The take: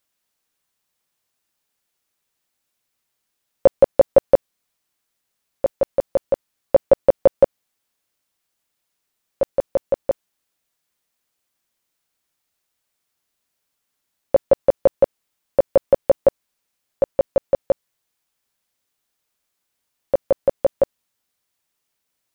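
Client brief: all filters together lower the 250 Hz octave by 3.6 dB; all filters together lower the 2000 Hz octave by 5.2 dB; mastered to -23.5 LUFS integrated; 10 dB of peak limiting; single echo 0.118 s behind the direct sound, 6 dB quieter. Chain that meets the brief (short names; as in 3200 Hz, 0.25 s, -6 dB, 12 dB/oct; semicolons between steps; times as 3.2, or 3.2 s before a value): bell 250 Hz -5 dB; bell 2000 Hz -7 dB; limiter -13.5 dBFS; echo 0.118 s -6 dB; gain +4 dB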